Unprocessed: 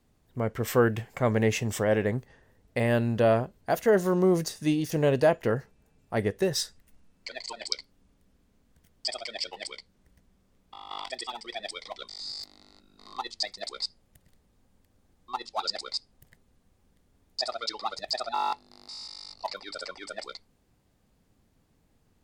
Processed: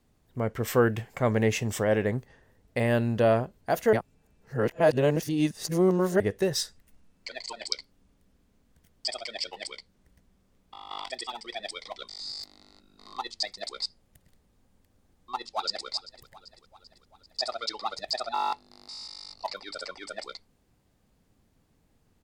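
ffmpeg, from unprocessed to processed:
ffmpeg -i in.wav -filter_complex "[0:a]asplit=2[link_01][link_02];[link_02]afade=type=in:start_time=15.36:duration=0.01,afade=type=out:start_time=15.87:duration=0.01,aecho=0:1:390|780|1170|1560|1950|2340|2730:0.141254|0.0918149|0.0596797|0.0387918|0.0252147|0.0163895|0.0106532[link_03];[link_01][link_03]amix=inputs=2:normalize=0,asplit=3[link_04][link_05][link_06];[link_04]atrim=end=3.932[link_07];[link_05]atrim=start=3.928:end=6.202,asetpts=PTS-STARTPTS,areverse[link_08];[link_06]atrim=start=6.198[link_09];[link_07][link_08]acrossfade=duration=0.004:curve1=hsin:curve2=hsin[link_10];[link_10][link_09]acrossfade=duration=0.004:curve1=hsin:curve2=hsin" out.wav

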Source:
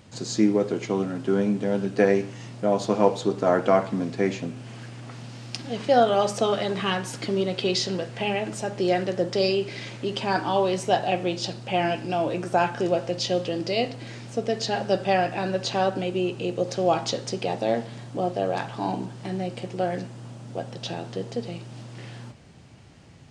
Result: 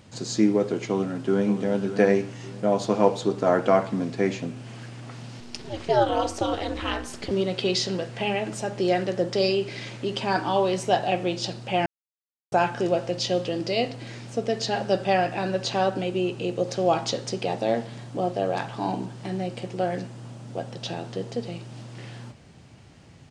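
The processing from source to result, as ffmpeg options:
ffmpeg -i in.wav -filter_complex "[0:a]asplit=2[link_01][link_02];[link_02]afade=type=in:start_time=0.86:duration=0.01,afade=type=out:start_time=1.58:duration=0.01,aecho=0:1:580|1160|1740:0.334965|0.10049|0.0301469[link_03];[link_01][link_03]amix=inputs=2:normalize=0,asettb=1/sr,asplit=3[link_04][link_05][link_06];[link_04]atrim=end=5.404[link_07];[link_05]atrim=start=5.4:end=7.31,asetpts=PTS-STARTPTS,afade=type=in:duration=0.004:curve=qsin,afade=type=out:start_time=1.906:duration=0.004:curve=qsin,aeval=exprs='val(0)*sin(2*PI*120*n/s)':channel_layout=same[link_08];[link_06]atrim=start=7.306[link_09];[link_07][link_08]acrossfade=duration=0.004:curve1=hsin:curve2=qsin[link_10];[link_10][link_09]acrossfade=duration=0.004:curve1=qsin:curve2=hsin,asplit=3[link_11][link_12][link_13];[link_11]atrim=end=11.86,asetpts=PTS-STARTPTS,afade=type=out:start_time=11.856:duration=0.004:curve=hsin[link_14];[link_12]atrim=start=11.86:end=12.52,asetpts=PTS-STARTPTS,volume=0[link_15];[link_13]atrim=start=12.52,asetpts=PTS-STARTPTS,afade=type=in:duration=0.004:curve=hsin[link_16];[link_14][link_15][link_16]concat=n=3:v=0:a=1" out.wav

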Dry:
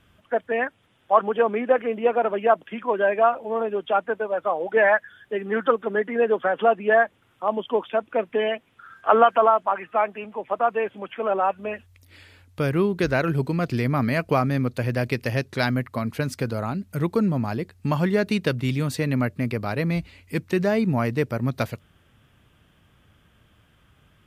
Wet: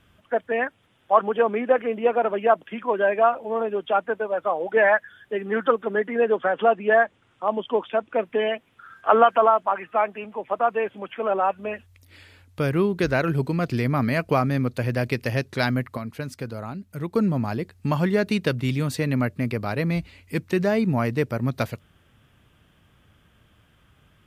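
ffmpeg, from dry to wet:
ffmpeg -i in.wav -filter_complex "[0:a]asettb=1/sr,asplit=3[link_01][link_02][link_03];[link_01]atrim=end=6.284[link_04];[link_02]atrim=start=6.28:end=8.14,asetpts=PTS-STARTPTS,afade=type=in:duration=0.004:curve=qsin,afade=type=out:start_time=1.856:duration=0.004:curve=qsin,lowpass=frequency=9000:width=0.5412,lowpass=frequency=9000:width=1.3066[link_05];[link_03]atrim=start=8.136[link_06];[link_04][link_05]acrossfade=duration=0.004:curve1=hsin:curve2=qsin[link_07];[link_07][link_06]acrossfade=duration=0.004:curve1=qsin:curve2=hsin,asplit=3[link_08][link_09][link_10];[link_08]atrim=end=15.972[link_11];[link_09]atrim=start=15.968:end=17.152,asetpts=PTS-STARTPTS,volume=-6dB[link_12];[link_10]atrim=start=17.148[link_13];[link_11][link_12]acrossfade=duration=0.004:curve1=hsin:curve2=hsin[link_14];[link_14][link_13]acrossfade=duration=0.004:curve1=hsin:curve2=hsin" out.wav

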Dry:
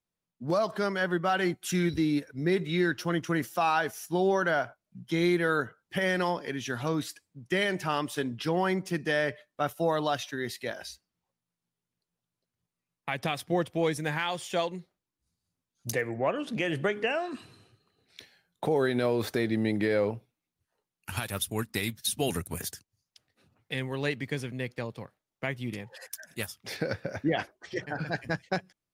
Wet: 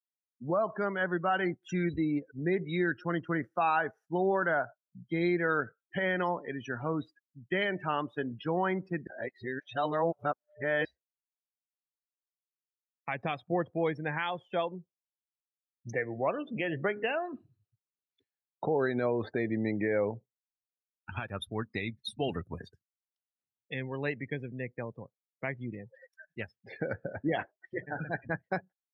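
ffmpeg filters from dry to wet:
ffmpeg -i in.wav -filter_complex "[0:a]asplit=3[link_01][link_02][link_03];[link_01]atrim=end=9.072[link_04];[link_02]atrim=start=9.068:end=10.852,asetpts=PTS-STARTPTS,areverse[link_05];[link_03]atrim=start=10.848[link_06];[link_04][link_05]acrossfade=duration=0.004:curve1=hsin:curve2=hsin[link_07];[link_07][link_06]acrossfade=duration=0.004:curve1=hsin:curve2=hsin,lowpass=frequency=1400:poles=1,afftdn=noise_reduction=36:noise_floor=-41,tiltshelf=frequency=860:gain=-4" out.wav

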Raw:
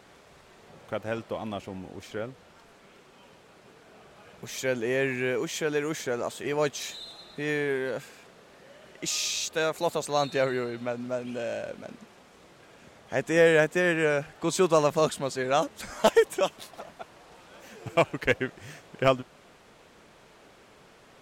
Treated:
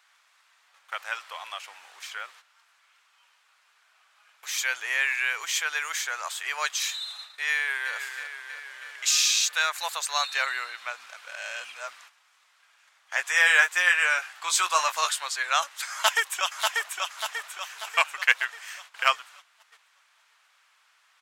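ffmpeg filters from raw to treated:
ffmpeg -i in.wav -filter_complex "[0:a]asplit=2[link_01][link_02];[link_02]afade=type=in:start_time=7.53:duration=0.01,afade=type=out:start_time=7.95:duration=0.01,aecho=0:1:320|640|960|1280|1600|1920|2240|2560|2880|3200|3520:0.398107|0.278675|0.195073|0.136551|0.0955855|0.0669099|0.0468369|0.0327858|0.0229501|0.0160651|0.0112455[link_03];[link_01][link_03]amix=inputs=2:normalize=0,asettb=1/sr,asplit=3[link_04][link_05][link_06];[link_04]atrim=end=13.144[link_07];[link_05]atrim=start=13.14:end=15.26,asetpts=PTS-STARTPTS,afade=type=in:duration=0.004:curve=qsin,afade=type=out:start_time=2.116:duration=0.004:curve=qsin,asplit=2[link_08][link_09];[link_09]adelay=17,volume=-6.5dB[link_10];[link_08][link_10]amix=inputs=2:normalize=0,atrim=end_sample=93492[link_11];[link_06]atrim=start=15.256[link_12];[link_07][link_11]acrossfade=duration=0.004:curve1=hsin:curve2=qsin[link_13];[link_13][link_12]acrossfade=duration=0.004:curve1=qsin:curve2=hsin,asplit=2[link_14][link_15];[link_15]afade=type=in:start_time=15.92:duration=0.01,afade=type=out:start_time=16.96:duration=0.01,aecho=0:1:590|1180|1770|2360|2950|3540|4130:0.668344|0.334172|0.167086|0.083543|0.0417715|0.0208857|0.0104429[link_16];[link_14][link_16]amix=inputs=2:normalize=0,asplit=3[link_17][link_18][link_19];[link_17]atrim=end=11.062[link_20];[link_18]atrim=start=11.058:end=11.932,asetpts=PTS-STARTPTS,areverse[link_21];[link_19]atrim=start=11.928[link_22];[link_20][link_21]acrossfade=duration=0.004:curve1=hsin:curve2=hsin[link_23];[link_23][link_22]acrossfade=duration=0.004:curve1=hsin:curve2=hsin,agate=range=-12dB:threshold=-48dB:ratio=16:detection=peak,highpass=frequency=1100:width=0.5412,highpass=frequency=1100:width=1.3066,volume=7.5dB" out.wav

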